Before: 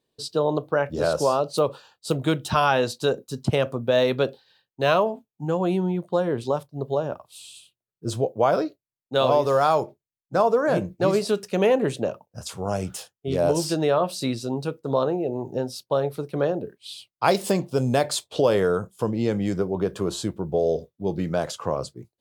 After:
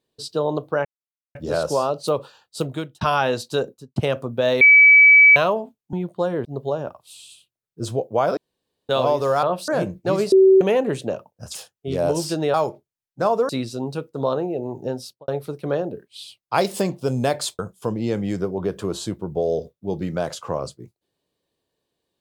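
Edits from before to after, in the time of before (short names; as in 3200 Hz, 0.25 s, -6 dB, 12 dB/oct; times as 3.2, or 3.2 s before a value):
0.85 insert silence 0.50 s
2.08–2.51 fade out
3.14–3.46 studio fade out
4.11–4.86 bleep 2290 Hz -7 dBFS
5.43–5.87 cut
6.39–6.7 cut
8.62–9.14 room tone
9.68–10.63 swap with 13.94–14.19
11.27–11.56 bleep 382 Hz -8.5 dBFS
12.5–12.95 cut
15.73–15.98 studio fade out
18.29–18.76 cut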